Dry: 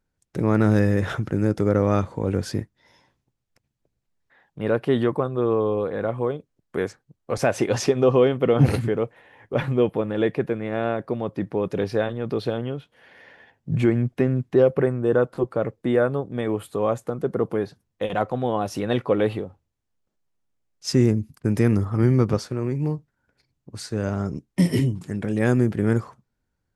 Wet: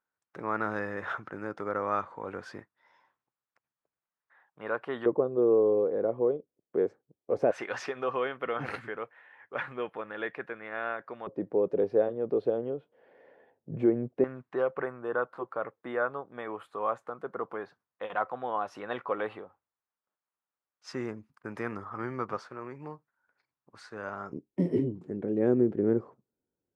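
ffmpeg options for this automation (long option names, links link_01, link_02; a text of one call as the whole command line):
ffmpeg -i in.wav -af "asetnsamples=nb_out_samples=441:pad=0,asendcmd='5.06 bandpass f 430;7.51 bandpass f 1500;11.27 bandpass f 470;14.24 bandpass f 1200;24.33 bandpass f 390',bandpass=frequency=1200:width_type=q:width=1.8:csg=0" out.wav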